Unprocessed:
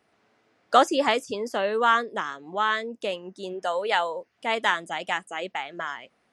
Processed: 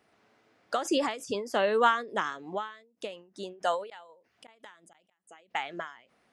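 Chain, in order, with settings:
0:03.88–0:05.37: gate with flip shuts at −17 dBFS, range −25 dB
every ending faded ahead of time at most 120 dB per second

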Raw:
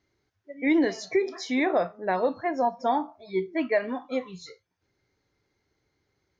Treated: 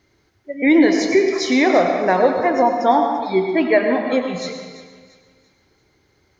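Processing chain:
in parallel at −0.5 dB: downward compressor, threshold −34 dBFS, peak gain reduction 14.5 dB
on the sum: feedback echo with a high-pass in the loop 341 ms, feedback 39%, high-pass 960 Hz, level −14 dB
convolution reverb RT60 1.5 s, pre-delay 86 ms, DRR 4.5 dB
level +7 dB

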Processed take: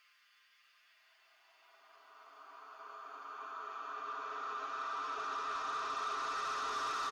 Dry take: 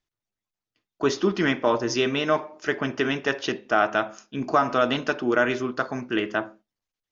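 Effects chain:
comb filter 7.5 ms, depth 93%
automatic gain control gain up to 9 dB
brickwall limiter −16 dBFS, peak gain reduction 14.5 dB
auto-filter high-pass saw down 0.44 Hz 860–1,900 Hz
output level in coarse steps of 14 dB
extreme stretch with random phases 28×, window 0.50 s, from 0:00.75
soft clipping −38.5 dBFS, distortion −13 dB
level +5.5 dB

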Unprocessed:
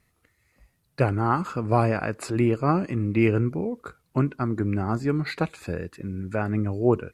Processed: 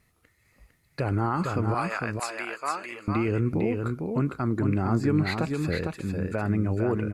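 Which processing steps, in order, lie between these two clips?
0:01.74–0:03.08: high-pass filter 1,100 Hz 12 dB per octave
brickwall limiter −17.5 dBFS, peak gain reduction 10.5 dB
single-tap delay 454 ms −4.5 dB
level +1.5 dB

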